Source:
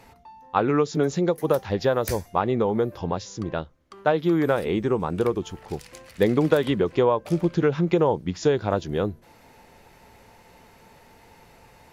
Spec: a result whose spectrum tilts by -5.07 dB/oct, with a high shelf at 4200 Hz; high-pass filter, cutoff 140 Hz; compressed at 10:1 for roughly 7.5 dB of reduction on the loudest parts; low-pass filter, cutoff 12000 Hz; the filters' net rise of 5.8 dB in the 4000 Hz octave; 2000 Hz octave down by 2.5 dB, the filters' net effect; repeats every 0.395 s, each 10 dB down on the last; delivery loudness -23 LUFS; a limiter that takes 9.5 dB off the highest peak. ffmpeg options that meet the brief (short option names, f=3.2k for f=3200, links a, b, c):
-af "highpass=140,lowpass=12k,equalizer=f=2k:t=o:g=-6,equalizer=f=4k:t=o:g=6.5,highshelf=f=4.2k:g=5,acompressor=threshold=-22dB:ratio=10,alimiter=limit=-20dB:level=0:latency=1,aecho=1:1:395|790|1185|1580:0.316|0.101|0.0324|0.0104,volume=8.5dB"